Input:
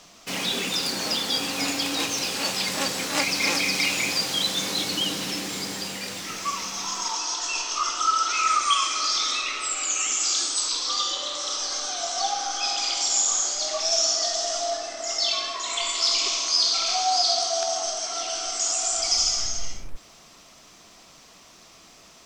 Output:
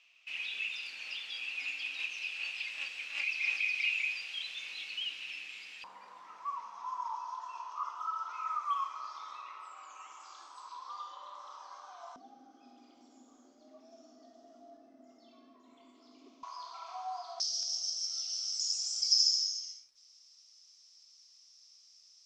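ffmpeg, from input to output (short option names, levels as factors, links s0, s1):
-af "asetnsamples=n=441:p=0,asendcmd='5.84 bandpass f 1000;12.16 bandpass f 250;16.43 bandpass f 1000;17.4 bandpass f 5300',bandpass=f=2600:t=q:w=10:csg=0"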